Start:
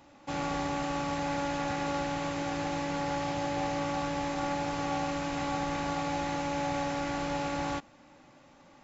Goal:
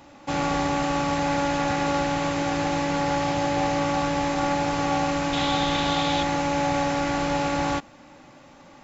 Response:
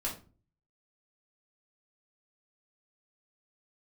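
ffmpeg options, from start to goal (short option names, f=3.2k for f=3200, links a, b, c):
-filter_complex "[0:a]asettb=1/sr,asplit=3[a][b][c];[a]atrim=end=5.334[d];[b]atrim=start=5.33:end=6.23,asetpts=PTS-STARTPTS,afade=t=in:d=0.004:c=qsin,afade=t=out:st=0.896:d=0.004:c=qsin,equalizer=f=3.5k:w=3.2:g=14[e];[c]atrim=start=6.226[f];[d][e]acrossfade=d=0.004:c1=hsin:c2=qsin[g];[g][f]acrossfade=d=0.004:c1=qsin:c2=hsin,volume=8dB"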